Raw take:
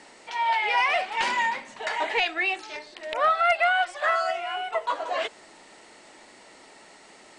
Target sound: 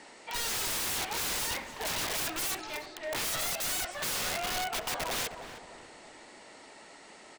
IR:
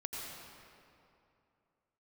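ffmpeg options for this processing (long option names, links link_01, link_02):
-filter_complex "[0:a]aeval=exprs='(mod(21.1*val(0)+1,2)-1)/21.1':channel_layout=same,asplit=2[link_01][link_02];[link_02]adelay=310,lowpass=frequency=1700:poles=1,volume=-8.5dB,asplit=2[link_03][link_04];[link_04]adelay=310,lowpass=frequency=1700:poles=1,volume=0.43,asplit=2[link_05][link_06];[link_06]adelay=310,lowpass=frequency=1700:poles=1,volume=0.43,asplit=2[link_07][link_08];[link_08]adelay=310,lowpass=frequency=1700:poles=1,volume=0.43,asplit=2[link_09][link_10];[link_10]adelay=310,lowpass=frequency=1700:poles=1,volume=0.43[link_11];[link_01][link_03][link_05][link_07][link_09][link_11]amix=inputs=6:normalize=0,volume=-1.5dB"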